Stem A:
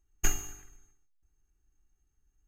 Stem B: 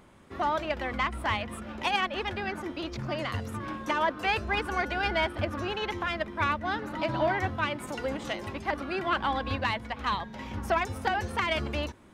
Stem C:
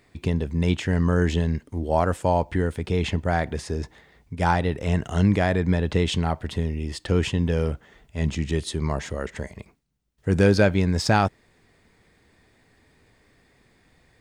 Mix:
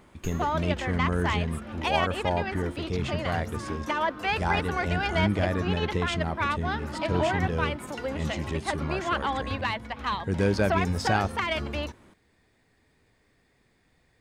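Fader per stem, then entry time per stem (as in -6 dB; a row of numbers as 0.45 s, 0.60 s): -13.5 dB, 0.0 dB, -6.5 dB; 0.00 s, 0.00 s, 0.00 s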